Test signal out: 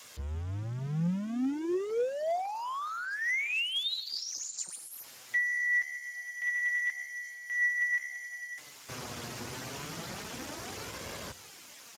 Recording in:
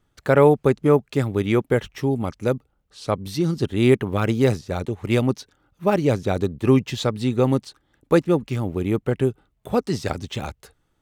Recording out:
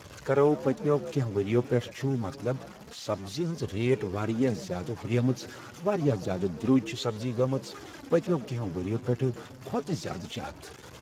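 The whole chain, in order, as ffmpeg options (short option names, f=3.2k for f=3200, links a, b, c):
-filter_complex "[0:a]aeval=exprs='val(0)+0.5*0.0398*sgn(val(0))':c=same,asplit=2[a][b];[b]asplit=4[c][d][e][f];[c]adelay=141,afreqshift=69,volume=-18dB[g];[d]adelay=282,afreqshift=138,volume=-25.3dB[h];[e]adelay=423,afreqshift=207,volume=-32.7dB[i];[f]adelay=564,afreqshift=276,volume=-40dB[j];[g][h][i][j]amix=inputs=4:normalize=0[k];[a][k]amix=inputs=2:normalize=0,flanger=delay=1.8:depth=6.6:regen=37:speed=0.27:shape=sinusoidal,volume=-5.5dB" -ar 32000 -c:a libspeex -b:a 15k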